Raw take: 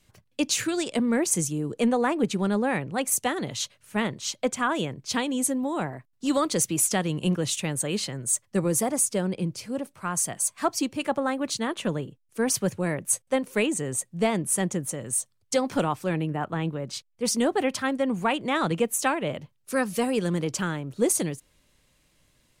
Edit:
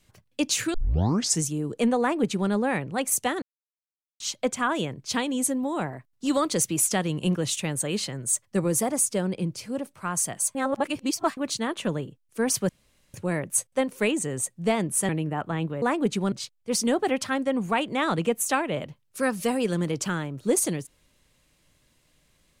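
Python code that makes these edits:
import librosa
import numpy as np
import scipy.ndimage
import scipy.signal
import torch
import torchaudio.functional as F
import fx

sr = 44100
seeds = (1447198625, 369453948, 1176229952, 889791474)

y = fx.edit(x, sr, fx.tape_start(start_s=0.74, length_s=0.69),
    fx.duplicate(start_s=2.0, length_s=0.5, to_s=16.85),
    fx.silence(start_s=3.42, length_s=0.78),
    fx.reverse_span(start_s=10.55, length_s=0.82),
    fx.insert_room_tone(at_s=12.69, length_s=0.45),
    fx.cut(start_s=14.64, length_s=1.48), tone=tone)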